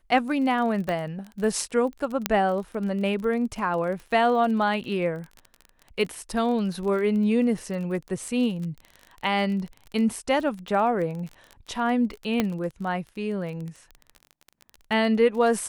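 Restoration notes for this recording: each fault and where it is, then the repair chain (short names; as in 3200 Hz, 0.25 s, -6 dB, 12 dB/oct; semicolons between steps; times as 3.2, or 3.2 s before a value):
crackle 25/s -32 dBFS
0.89 pop -16 dBFS
2.26 pop -5 dBFS
12.4 pop -9 dBFS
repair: de-click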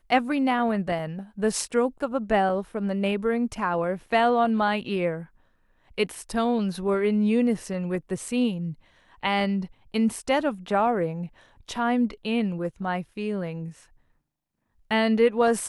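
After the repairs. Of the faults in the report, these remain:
none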